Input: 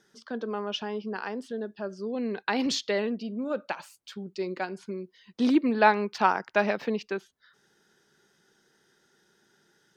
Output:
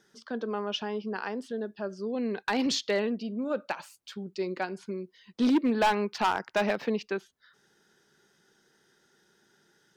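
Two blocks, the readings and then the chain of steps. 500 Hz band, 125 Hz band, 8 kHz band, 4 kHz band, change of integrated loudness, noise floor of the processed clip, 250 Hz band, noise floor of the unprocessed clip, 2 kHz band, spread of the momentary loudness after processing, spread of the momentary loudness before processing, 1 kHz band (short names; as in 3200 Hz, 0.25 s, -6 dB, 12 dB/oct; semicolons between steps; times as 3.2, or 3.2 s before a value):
-1.0 dB, n/a, +0.5 dB, +0.5 dB, -1.5 dB, -68 dBFS, -0.5 dB, -68 dBFS, -3.0 dB, 13 LU, 15 LU, -3.0 dB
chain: hard clip -19 dBFS, distortion -10 dB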